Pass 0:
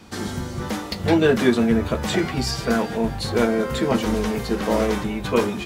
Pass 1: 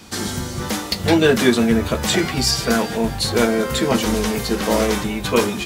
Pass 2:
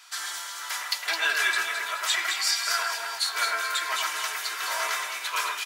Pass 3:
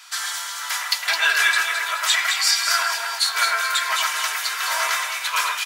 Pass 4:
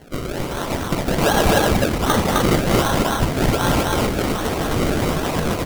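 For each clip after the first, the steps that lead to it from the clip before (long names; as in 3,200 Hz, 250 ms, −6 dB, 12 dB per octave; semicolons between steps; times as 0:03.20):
high-shelf EQ 3,100 Hz +9.5 dB; level +2 dB
four-pole ladder high-pass 1,000 Hz, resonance 30%; comb filter 3 ms, depth 51%; on a send: delay that swaps between a low-pass and a high-pass 107 ms, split 2,400 Hz, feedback 67%, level −2 dB
high-pass filter 660 Hz 12 dB per octave; level +6.5 dB
sample-and-hold swept by an LFO 35×, swing 100% 1.3 Hz; loudspeakers that aren't time-aligned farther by 22 metres −11 dB, 89 metres −1 dB; level +1 dB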